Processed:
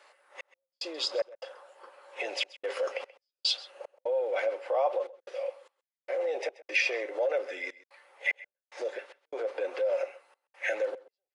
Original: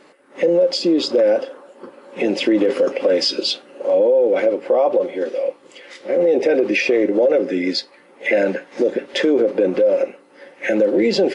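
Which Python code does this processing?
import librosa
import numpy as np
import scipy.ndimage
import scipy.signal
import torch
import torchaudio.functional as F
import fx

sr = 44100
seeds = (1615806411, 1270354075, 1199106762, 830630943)

p1 = scipy.signal.sosfilt(scipy.signal.butter(4, 630.0, 'highpass', fs=sr, output='sos'), x)
p2 = fx.step_gate(p1, sr, bpm=74, pattern='xx..xx.xxxxx.', floor_db=-60.0, edge_ms=4.5)
p3 = p2 + fx.echo_single(p2, sr, ms=131, db=-19.5, dry=0)
y = p3 * 10.0 ** (-6.5 / 20.0)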